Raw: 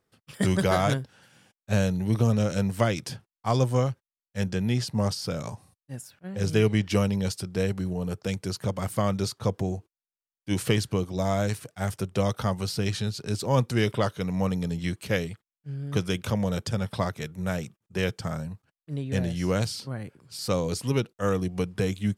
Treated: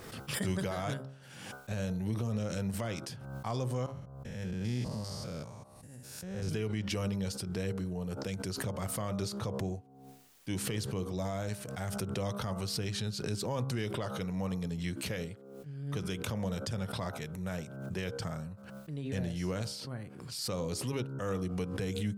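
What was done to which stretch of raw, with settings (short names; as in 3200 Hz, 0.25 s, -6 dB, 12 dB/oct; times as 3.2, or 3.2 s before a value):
3.86–6.49 stepped spectrum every 0.2 s
whole clip: de-hum 67.27 Hz, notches 23; limiter -17.5 dBFS; backwards sustainer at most 42 dB/s; gain -7 dB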